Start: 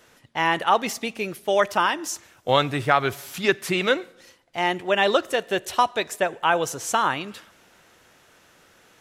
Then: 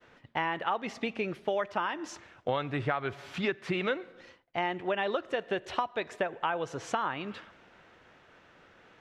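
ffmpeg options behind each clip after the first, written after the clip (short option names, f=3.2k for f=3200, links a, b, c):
-af "lowpass=2.8k,agate=range=-33dB:threshold=-55dB:ratio=3:detection=peak,acompressor=threshold=-28dB:ratio=5"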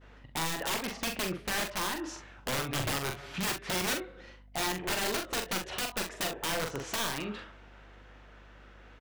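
-filter_complex "[0:a]aeval=exprs='(mod(21.1*val(0)+1,2)-1)/21.1':c=same,aeval=exprs='val(0)+0.00158*(sin(2*PI*50*n/s)+sin(2*PI*2*50*n/s)/2+sin(2*PI*3*50*n/s)/3+sin(2*PI*4*50*n/s)/4+sin(2*PI*5*50*n/s)/5)':c=same,asplit=2[a][b];[b]aecho=0:1:43|65:0.562|0.178[c];[a][c]amix=inputs=2:normalize=0"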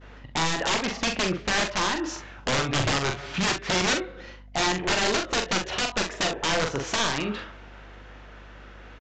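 -af "aresample=16000,aresample=44100,volume=8dB"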